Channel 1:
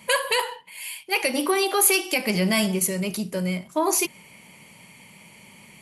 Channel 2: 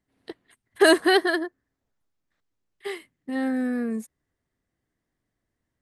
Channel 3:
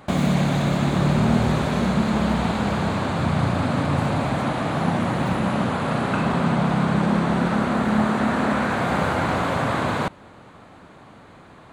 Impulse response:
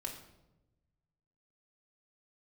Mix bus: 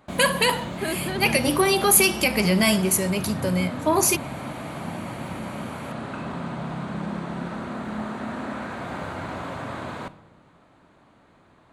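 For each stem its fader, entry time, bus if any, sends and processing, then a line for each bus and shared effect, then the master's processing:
+2.0 dB, 0.10 s, no send, no processing
−13.5 dB, 0.00 s, no send, no processing
−13.0 dB, 0.00 s, send −6 dB, no processing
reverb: on, RT60 1.0 s, pre-delay 3 ms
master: no processing

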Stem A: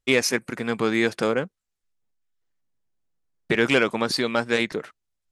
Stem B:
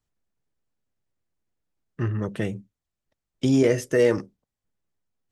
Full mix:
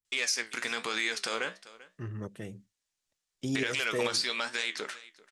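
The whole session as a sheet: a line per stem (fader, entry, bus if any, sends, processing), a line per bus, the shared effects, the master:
+2.5 dB, 0.05 s, no send, echo send −22.5 dB, meter weighting curve ITU-R 468; downward compressor 10 to 1, threshold −21 dBFS, peak gain reduction 13 dB; flanger 1.1 Hz, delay 9.5 ms, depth 9.4 ms, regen +66%
−10.0 dB, 0.00 s, no send, no echo send, high-shelf EQ 6,200 Hz +11 dB; shaped tremolo saw up 2.2 Hz, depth 60%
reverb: not used
echo: single-tap delay 390 ms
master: brickwall limiter −18.5 dBFS, peak gain reduction 9 dB

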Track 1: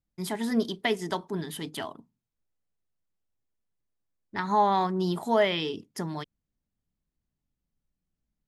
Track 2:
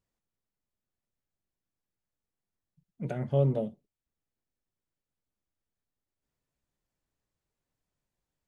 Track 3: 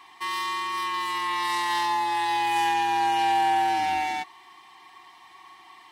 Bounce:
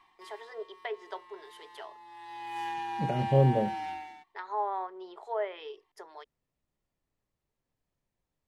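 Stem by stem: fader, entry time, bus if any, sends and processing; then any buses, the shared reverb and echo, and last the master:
−8.0 dB, 0.00 s, no send, noise gate −43 dBFS, range −15 dB; treble cut that deepens with the level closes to 1,800 Hz, closed at −21 dBFS; elliptic high-pass filter 400 Hz, stop band 40 dB
+2.5 dB, 0.00 s, no send, notch filter 1,500 Hz; pitch vibrato 0.48 Hz 52 cents
−11.0 dB, 0.00 s, no send, automatic ducking −16 dB, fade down 0.45 s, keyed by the first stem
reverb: not used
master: high-shelf EQ 3,800 Hz −8.5 dB

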